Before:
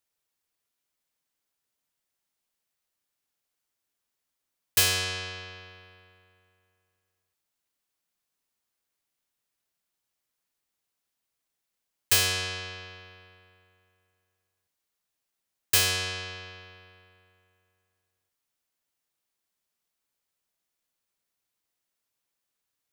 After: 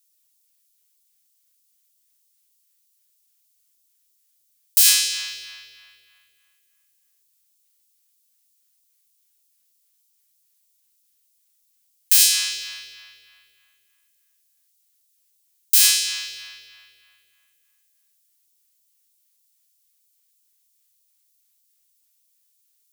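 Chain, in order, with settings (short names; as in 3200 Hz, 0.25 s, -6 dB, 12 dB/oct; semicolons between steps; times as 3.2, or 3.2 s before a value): differentiator; two-slope reverb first 0.22 s, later 1.6 s, from -19 dB, DRR 17 dB; phaser stages 2, 3.2 Hz, lowest notch 340–1000 Hz; maximiser +16.5 dB; gain -2.5 dB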